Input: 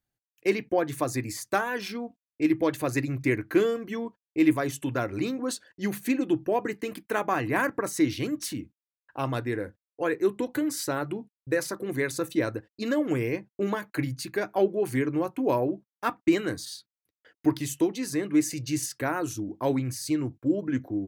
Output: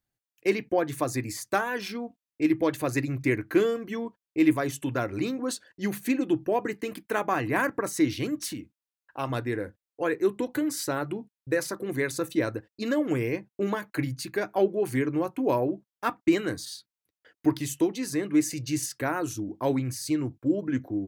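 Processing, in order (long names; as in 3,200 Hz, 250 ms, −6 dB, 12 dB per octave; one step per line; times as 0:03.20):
0:08.54–0:09.30: low-shelf EQ 350 Hz −5.5 dB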